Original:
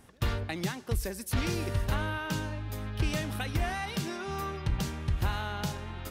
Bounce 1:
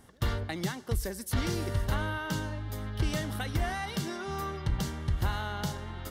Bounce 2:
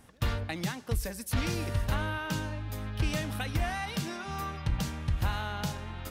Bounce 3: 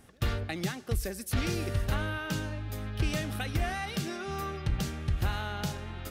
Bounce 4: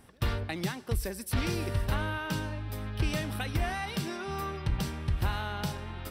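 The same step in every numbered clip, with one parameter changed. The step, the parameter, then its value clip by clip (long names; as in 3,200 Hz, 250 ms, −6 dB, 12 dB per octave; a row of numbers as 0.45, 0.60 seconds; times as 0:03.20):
notch filter, centre frequency: 2,500, 380, 970, 6,700 Hertz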